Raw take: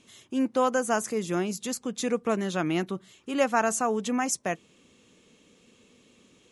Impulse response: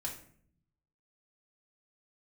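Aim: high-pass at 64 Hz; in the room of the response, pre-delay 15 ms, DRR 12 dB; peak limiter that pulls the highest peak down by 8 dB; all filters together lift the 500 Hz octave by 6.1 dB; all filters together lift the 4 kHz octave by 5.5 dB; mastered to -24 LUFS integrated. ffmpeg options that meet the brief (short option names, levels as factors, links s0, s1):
-filter_complex "[0:a]highpass=64,equalizer=f=500:t=o:g=7,equalizer=f=4000:t=o:g=7.5,alimiter=limit=0.2:level=0:latency=1,asplit=2[s0][s1];[1:a]atrim=start_sample=2205,adelay=15[s2];[s1][s2]afir=irnorm=-1:irlink=0,volume=0.251[s3];[s0][s3]amix=inputs=2:normalize=0,volume=1.26"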